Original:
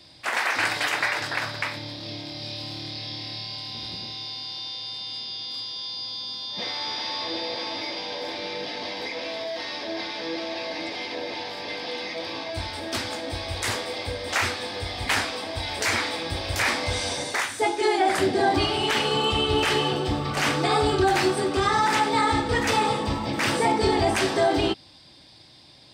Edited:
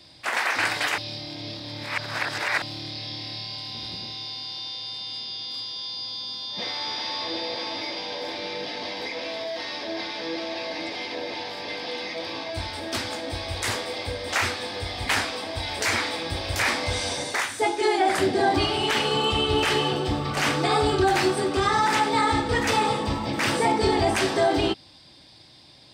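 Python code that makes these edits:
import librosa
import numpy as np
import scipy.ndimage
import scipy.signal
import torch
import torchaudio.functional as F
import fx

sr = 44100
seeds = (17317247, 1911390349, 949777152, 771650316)

y = fx.edit(x, sr, fx.reverse_span(start_s=0.98, length_s=1.64), tone=tone)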